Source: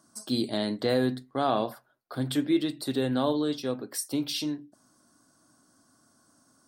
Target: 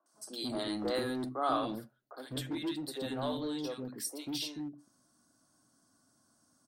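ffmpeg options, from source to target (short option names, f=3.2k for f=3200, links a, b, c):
-filter_complex "[0:a]asettb=1/sr,asplit=3[a][b][c];[a]atrim=end=0.504[d];[b]atrim=start=0.5:end=1.6,asetpts=PTS-STARTPTS,afade=t=in:d=0.004:c=qsin,afade=t=out:st=1.096:d=0.004:c=qsin,equalizer=f=315:t=o:w=0.33:g=12,equalizer=f=1.25k:t=o:w=0.33:g=11,equalizer=f=10k:t=o:w=0.33:g=7[e];[c]atrim=start=1.596[f];[d][e]acrossfade=d=0.004:c1=hsin:c2=qsin[g];[g][f]acrossfade=d=0.004:c1=qsin:c2=hsin,acrossover=split=390|1300[h][i][j];[j]adelay=60[k];[h]adelay=140[l];[l][i][k]amix=inputs=3:normalize=0,acrossover=split=390|1700|2000[m][n][o][p];[m]asoftclip=type=hard:threshold=-32.5dB[q];[q][n][o][p]amix=inputs=4:normalize=0,volume=-5.5dB"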